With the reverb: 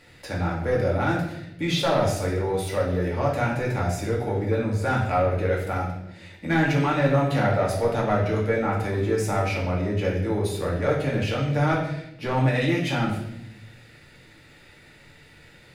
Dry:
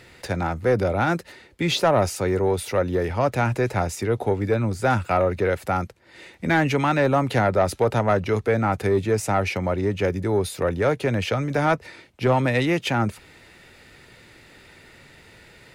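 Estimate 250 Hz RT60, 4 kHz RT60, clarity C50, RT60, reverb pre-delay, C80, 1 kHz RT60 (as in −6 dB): 1.3 s, 0.80 s, 4.0 dB, 0.80 s, 4 ms, 7.0 dB, 0.70 s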